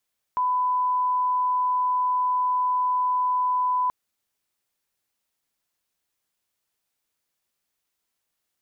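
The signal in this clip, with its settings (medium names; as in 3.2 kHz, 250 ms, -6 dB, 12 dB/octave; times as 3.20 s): line-up tone -20 dBFS 3.53 s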